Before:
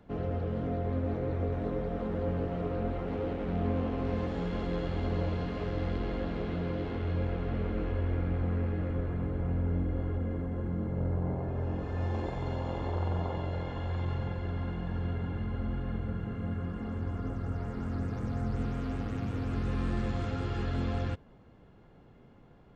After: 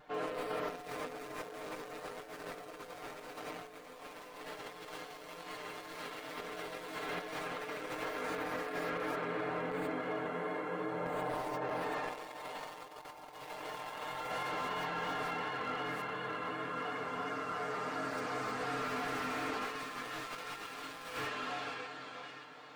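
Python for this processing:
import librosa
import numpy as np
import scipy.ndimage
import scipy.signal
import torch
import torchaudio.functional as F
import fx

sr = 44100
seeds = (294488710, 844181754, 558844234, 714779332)

p1 = scipy.signal.sosfilt(scipy.signal.butter(2, 770.0, 'highpass', fs=sr, output='sos'), x)
p2 = fx.echo_feedback(p1, sr, ms=582, feedback_pct=42, wet_db=-6.5)
p3 = fx.quant_dither(p2, sr, seeds[0], bits=6, dither='none')
p4 = p2 + (p3 * 10.0 ** (-3.0 / 20.0))
p5 = fx.vibrato(p4, sr, rate_hz=2.8, depth_cents=63.0)
p6 = p5 + 0.86 * np.pad(p5, (int(6.6 * sr / 1000.0), 0))[:len(p5)]
p7 = fx.rev_gated(p6, sr, seeds[1], gate_ms=160, shape='rising', drr_db=-1.0)
p8 = fx.over_compress(p7, sr, threshold_db=-41.0, ratio=-0.5)
p9 = fx.slew_limit(p8, sr, full_power_hz=24.0)
y = p9 * 10.0 ** (1.5 / 20.0)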